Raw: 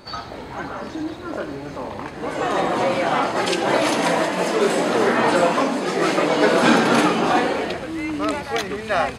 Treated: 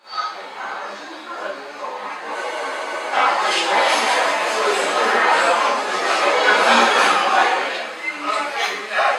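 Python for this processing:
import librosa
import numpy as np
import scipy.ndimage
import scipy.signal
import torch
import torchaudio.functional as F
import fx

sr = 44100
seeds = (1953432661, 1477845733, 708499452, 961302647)

y = scipy.signal.sosfilt(scipy.signal.butter(2, 760.0, 'highpass', fs=sr, output='sos'), x)
y = fx.high_shelf(y, sr, hz=8600.0, db=-8.0)
y = fx.rev_schroeder(y, sr, rt60_s=0.53, comb_ms=30, drr_db=-10.0)
y = fx.spec_freeze(y, sr, seeds[0], at_s=2.36, hold_s=0.76)
y = fx.ensemble(y, sr)
y = y * librosa.db_to_amplitude(-1.0)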